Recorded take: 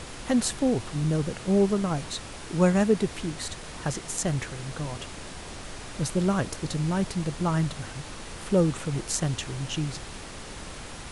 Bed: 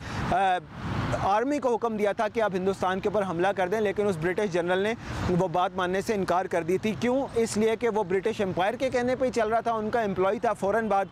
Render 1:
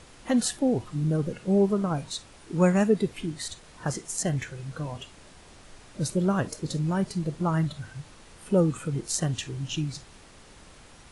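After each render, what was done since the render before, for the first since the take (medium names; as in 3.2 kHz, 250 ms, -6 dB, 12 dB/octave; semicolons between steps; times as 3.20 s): noise print and reduce 11 dB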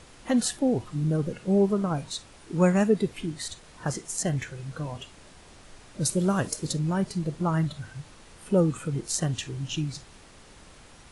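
6.05–6.73 s: treble shelf 5.2 kHz +10.5 dB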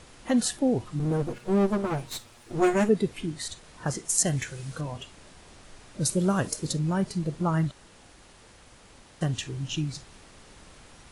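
0.99–2.89 s: comb filter that takes the minimum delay 8.4 ms; 4.09–4.81 s: treble shelf 4.2 kHz +9.5 dB; 7.71–9.21 s: room tone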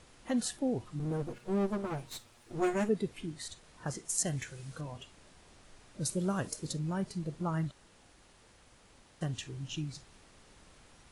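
trim -8 dB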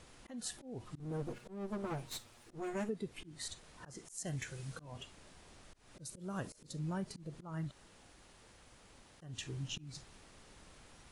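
compression 8:1, threshold -35 dBFS, peak gain reduction 11.5 dB; slow attack 205 ms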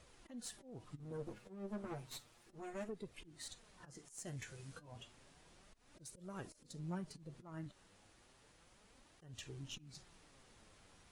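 valve stage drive 31 dB, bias 0.45; flange 0.32 Hz, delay 1.5 ms, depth 9.3 ms, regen +48%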